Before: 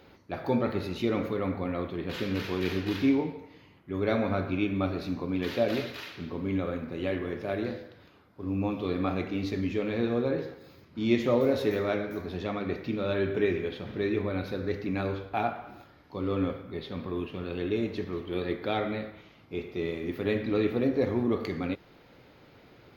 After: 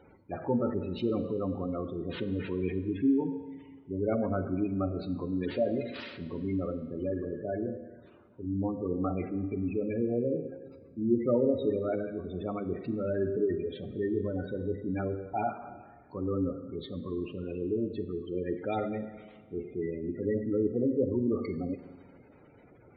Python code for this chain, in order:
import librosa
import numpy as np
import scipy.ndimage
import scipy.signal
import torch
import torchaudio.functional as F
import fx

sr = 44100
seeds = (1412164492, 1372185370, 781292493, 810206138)

y = fx.spec_gate(x, sr, threshold_db=-15, keep='strong')
y = fx.rev_schroeder(y, sr, rt60_s=1.8, comb_ms=33, drr_db=12.5)
y = y * 10.0 ** (-1.5 / 20.0)